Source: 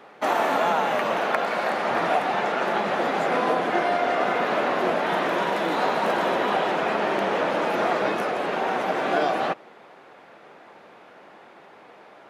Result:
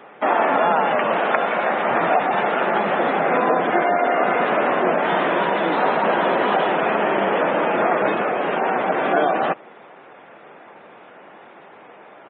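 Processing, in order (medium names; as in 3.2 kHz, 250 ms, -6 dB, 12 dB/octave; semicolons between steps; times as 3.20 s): spectral gate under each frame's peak -25 dB strong; resampled via 8 kHz; trim +4.5 dB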